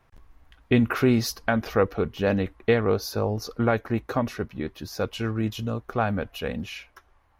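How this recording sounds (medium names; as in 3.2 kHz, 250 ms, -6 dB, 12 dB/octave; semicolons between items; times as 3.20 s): noise floor -62 dBFS; spectral tilt -5.5 dB/octave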